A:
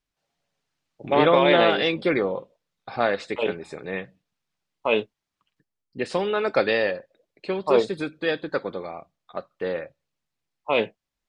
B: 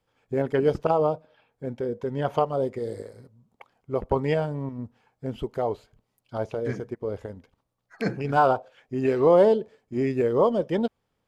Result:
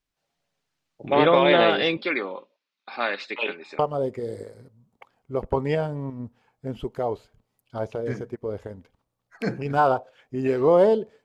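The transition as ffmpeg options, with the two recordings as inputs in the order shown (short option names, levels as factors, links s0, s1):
-filter_complex "[0:a]asettb=1/sr,asplit=3[s0][s1][s2];[s0]atrim=end=1.974[s3];[s1]atrim=start=1.97:end=3.79,asetpts=PTS-STARTPTS,afade=t=in:d=0.004:c=qsin,afade=t=out:st=1.816:d=0.004:c=qsin,highpass=f=270:w=0.5412,highpass=f=270:w=1.3066,equalizer=f=340:t=q:w=4:g=-5,equalizer=f=480:t=q:w=4:g=-9,equalizer=f=690:t=q:w=4:g=-7,equalizer=f=2500:t=q:w=4:g=6,equalizer=f=4200:t=q:w=4:g=3,lowpass=f=5900:w=0.5412,lowpass=f=5900:w=1.3066[s4];[s2]atrim=start=3.786[s5];[s3][s4]acrossfade=d=0.004:c1=hsin:c2=qsin[s6];[s6][s5]acrossfade=d=0.004:c1=qsin:c2=hsin,apad=whole_dur=11.24,atrim=end=11.24,atrim=end=3.792[s7];[1:a]atrim=start=2.378:end=9.83[s8];[s7][s8]acrossfade=d=0.004:c1=hsin:c2=hsin"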